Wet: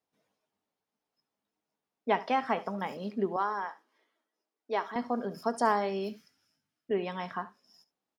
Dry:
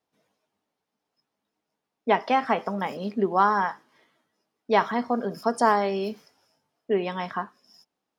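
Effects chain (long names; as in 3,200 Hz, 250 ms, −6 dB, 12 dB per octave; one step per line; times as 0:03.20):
0:03.36–0:04.96: four-pole ladder high-pass 230 Hz, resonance 20%
0:06.09–0:06.91: flat-topped bell 650 Hz −11.5 dB
on a send: single-tap delay 72 ms −18 dB
on the sum: level −6 dB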